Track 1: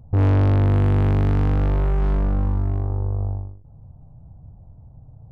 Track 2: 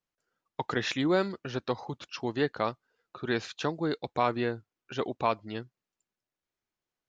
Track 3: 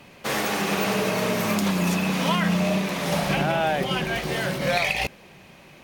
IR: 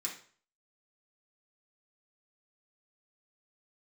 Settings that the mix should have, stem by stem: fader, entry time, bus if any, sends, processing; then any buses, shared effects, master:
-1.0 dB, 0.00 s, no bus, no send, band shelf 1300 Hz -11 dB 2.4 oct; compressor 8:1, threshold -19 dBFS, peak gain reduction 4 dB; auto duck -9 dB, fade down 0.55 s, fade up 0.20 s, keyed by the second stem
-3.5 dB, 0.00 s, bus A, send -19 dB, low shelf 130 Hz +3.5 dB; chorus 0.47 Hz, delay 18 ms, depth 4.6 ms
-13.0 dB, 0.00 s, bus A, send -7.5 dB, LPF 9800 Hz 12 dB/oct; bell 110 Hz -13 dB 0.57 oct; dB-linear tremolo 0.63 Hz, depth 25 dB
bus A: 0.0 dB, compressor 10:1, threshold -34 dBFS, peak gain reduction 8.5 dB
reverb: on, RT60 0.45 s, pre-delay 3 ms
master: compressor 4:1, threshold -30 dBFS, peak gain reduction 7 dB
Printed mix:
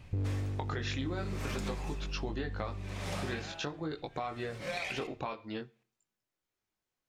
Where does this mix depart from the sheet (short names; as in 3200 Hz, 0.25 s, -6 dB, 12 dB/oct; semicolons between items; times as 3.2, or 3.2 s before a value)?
stem 1 -1.0 dB -> -7.5 dB; stem 2 -3.5 dB -> +3.0 dB